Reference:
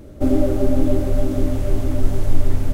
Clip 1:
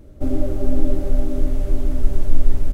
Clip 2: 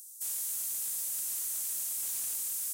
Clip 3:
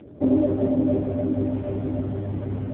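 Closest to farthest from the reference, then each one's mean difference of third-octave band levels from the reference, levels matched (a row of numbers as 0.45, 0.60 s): 1, 3, 2; 1.0, 8.5, 20.0 dB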